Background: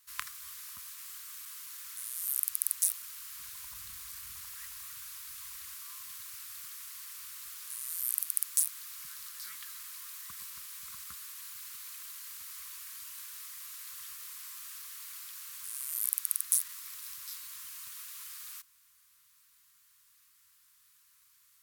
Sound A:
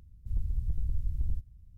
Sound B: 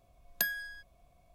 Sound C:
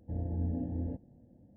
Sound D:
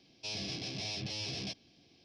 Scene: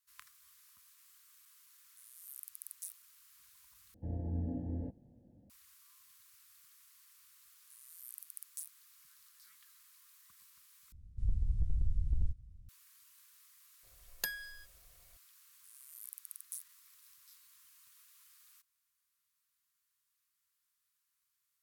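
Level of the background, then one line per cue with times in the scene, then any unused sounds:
background -17.5 dB
3.94 replace with C -3.5 dB
10.92 replace with A -1.5 dB + downsampling 22050 Hz
13.83 add B -5 dB + comb 2.2 ms, depth 64%
not used: D

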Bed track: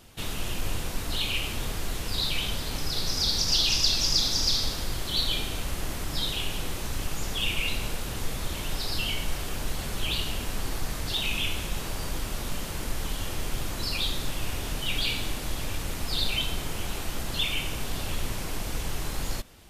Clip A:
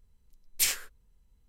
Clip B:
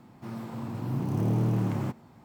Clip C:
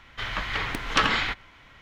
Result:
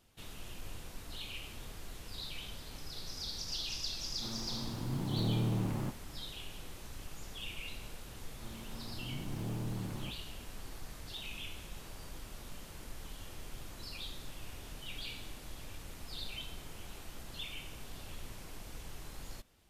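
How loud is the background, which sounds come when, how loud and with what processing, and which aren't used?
bed track -15.5 dB
3.99 add B -6.5 dB
8.19 add B -13 dB
not used: A, C

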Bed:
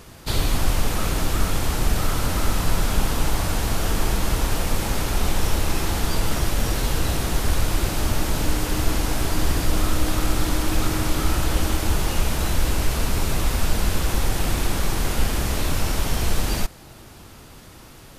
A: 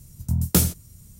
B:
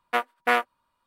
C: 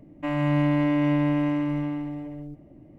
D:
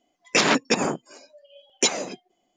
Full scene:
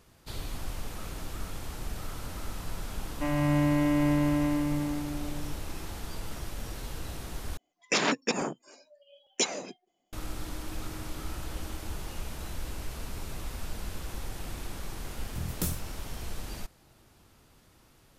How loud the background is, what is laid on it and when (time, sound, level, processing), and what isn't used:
bed -16 dB
2.98 add C -3 dB
7.57 replace with D -7 dB
15.07 add A -13.5 dB
not used: B

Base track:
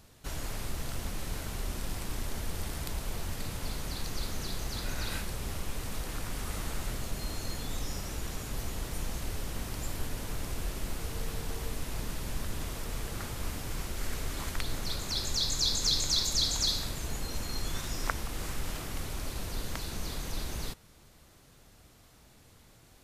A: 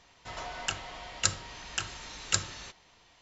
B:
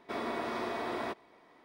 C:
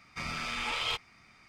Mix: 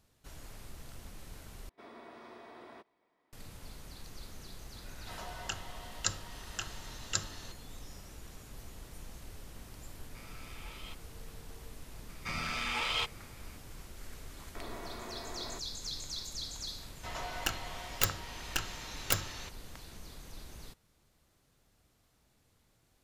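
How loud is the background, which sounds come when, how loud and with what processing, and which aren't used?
base track -12.5 dB
1.69 replace with B -16 dB
4.81 add A -5.5 dB + notch 2300 Hz, Q 5.8
9.98 add C -18 dB
12.09 add C -0.5 dB
14.46 add B -10 dB
16.78 add A -1 dB + tracing distortion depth 0.23 ms

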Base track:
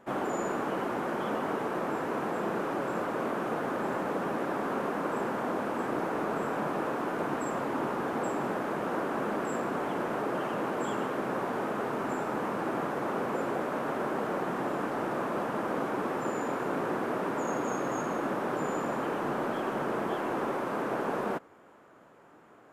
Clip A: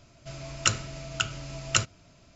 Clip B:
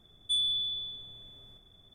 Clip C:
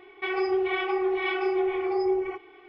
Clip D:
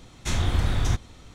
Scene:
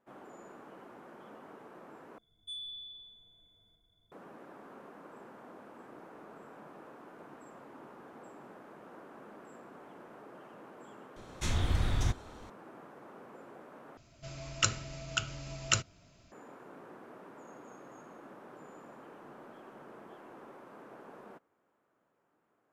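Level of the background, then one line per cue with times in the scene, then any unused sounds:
base track -20 dB
2.18 replace with B -14.5 dB + ripple EQ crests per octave 1.8, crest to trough 12 dB
11.16 add D -6.5 dB
13.97 replace with A -4.5 dB
not used: C

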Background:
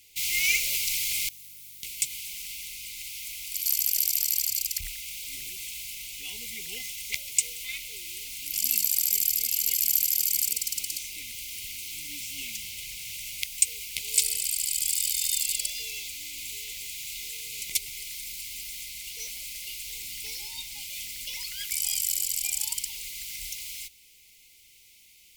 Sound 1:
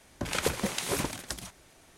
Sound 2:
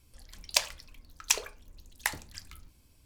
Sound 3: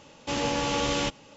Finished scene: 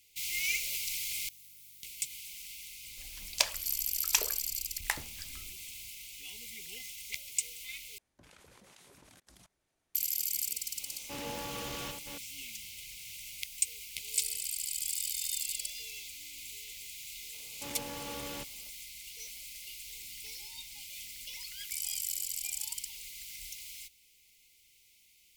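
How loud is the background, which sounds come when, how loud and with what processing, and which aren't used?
background -8 dB
2.84 add 2 -2 dB
7.98 replace with 1 -13 dB + level quantiser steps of 23 dB
10.82 add 3 -13 dB + reverse delay 0.234 s, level -7 dB
17.34 add 3 -15 dB

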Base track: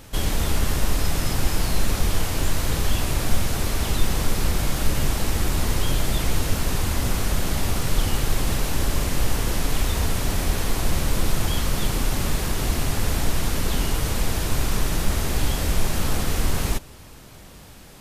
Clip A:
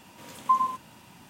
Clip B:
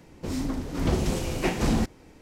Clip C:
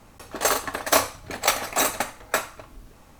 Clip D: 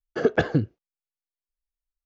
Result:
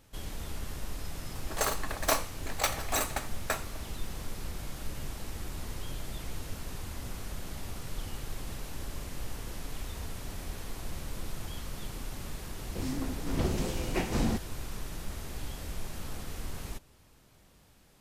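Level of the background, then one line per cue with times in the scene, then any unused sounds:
base track -16.5 dB
1.16 add C -8.5 dB
12.52 add B -5.5 dB
not used: A, D

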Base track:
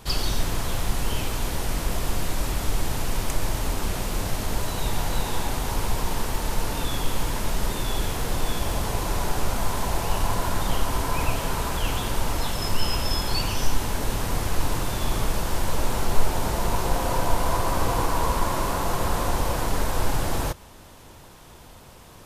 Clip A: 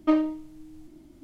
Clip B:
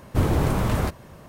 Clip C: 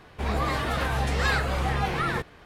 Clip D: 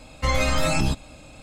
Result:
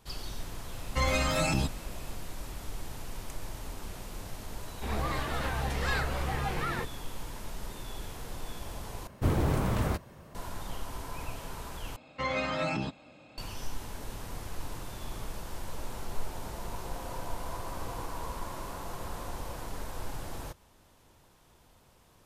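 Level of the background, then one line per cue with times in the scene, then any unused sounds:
base track -14.5 dB
0.73 add D -5 dB + HPF 47 Hz
4.63 add C -6.5 dB
9.07 replace with B -6 dB
11.96 replace with D -6.5 dB + BPF 160–3400 Hz
not used: A

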